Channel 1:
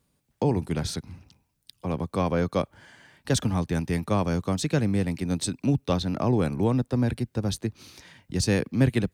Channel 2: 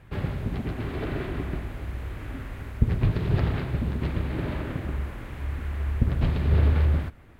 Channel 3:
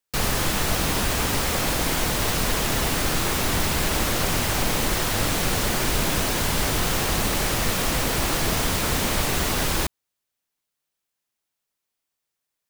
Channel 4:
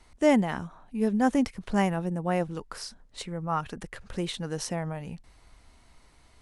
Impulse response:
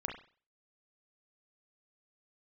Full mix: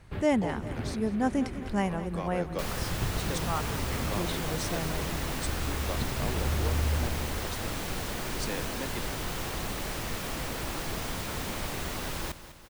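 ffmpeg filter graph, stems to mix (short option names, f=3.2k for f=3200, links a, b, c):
-filter_complex "[0:a]highpass=400,volume=-9.5dB,asplit=2[a][b];[b]volume=-17.5dB[c];[1:a]acompressor=threshold=-25dB:ratio=6,volume=-4dB,asplit=2[d][e];[e]volume=-7.5dB[f];[2:a]equalizer=f=11k:t=o:w=2.4:g=-3.5,adelay=2450,volume=-10.5dB,asplit=2[g][h];[h]volume=-14dB[i];[3:a]volume=-4dB,asplit=3[j][k][l];[k]volume=-14dB[m];[l]apad=whole_len=326006[n];[d][n]sidechaincompress=threshold=-45dB:ratio=8:attack=16:release=140[o];[c][f][i][m]amix=inputs=4:normalize=0,aecho=0:1:200|400|600|800|1000|1200|1400|1600|1800:1|0.58|0.336|0.195|0.113|0.0656|0.0381|0.0221|0.0128[p];[a][o][g][j][p]amix=inputs=5:normalize=0"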